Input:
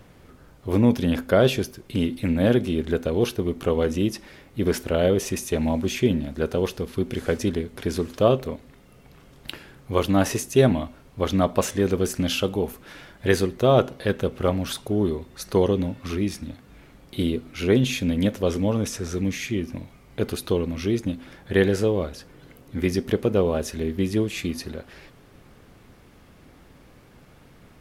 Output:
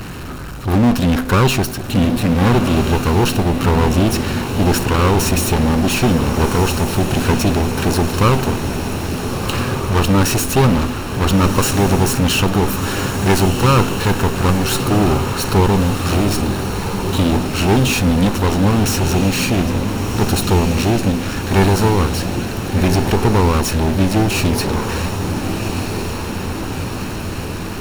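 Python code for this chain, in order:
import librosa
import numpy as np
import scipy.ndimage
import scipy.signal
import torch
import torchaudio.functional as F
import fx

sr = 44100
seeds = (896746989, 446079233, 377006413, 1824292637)

y = fx.lower_of_two(x, sr, delay_ms=0.72)
y = fx.power_curve(y, sr, exponent=0.5)
y = fx.echo_diffused(y, sr, ms=1399, feedback_pct=64, wet_db=-7)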